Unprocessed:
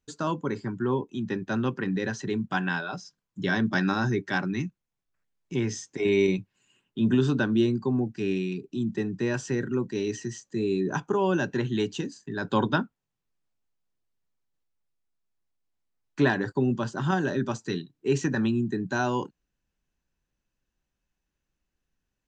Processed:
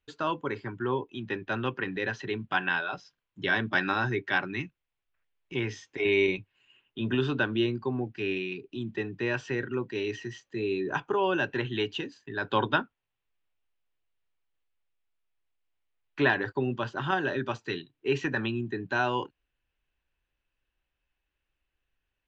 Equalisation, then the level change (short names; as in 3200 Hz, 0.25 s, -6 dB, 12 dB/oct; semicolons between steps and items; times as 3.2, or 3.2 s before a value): synth low-pass 2900 Hz, resonance Q 1.9; bell 190 Hz -12 dB 1 oct; 0.0 dB